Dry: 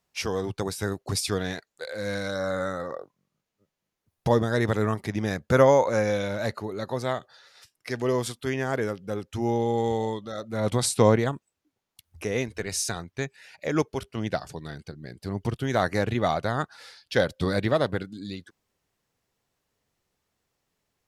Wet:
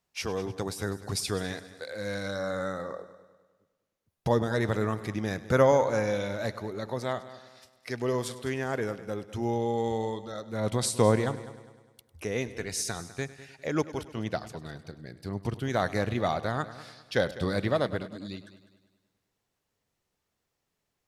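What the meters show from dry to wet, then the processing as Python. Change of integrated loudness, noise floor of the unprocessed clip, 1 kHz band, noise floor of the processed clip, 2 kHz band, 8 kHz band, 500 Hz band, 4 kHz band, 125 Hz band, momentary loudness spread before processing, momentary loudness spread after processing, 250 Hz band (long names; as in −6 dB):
−3.5 dB, −83 dBFS, −3.5 dB, −82 dBFS, −3.5 dB, −3.5 dB, −3.5 dB, −3.5 dB, −3.5 dB, 15 LU, 14 LU, −3.5 dB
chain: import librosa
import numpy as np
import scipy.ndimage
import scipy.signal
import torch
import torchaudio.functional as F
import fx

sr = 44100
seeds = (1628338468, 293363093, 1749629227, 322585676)

y = fx.echo_heads(x, sr, ms=101, heads='first and second', feedback_pct=44, wet_db=-18)
y = F.gain(torch.from_numpy(y), -3.5).numpy()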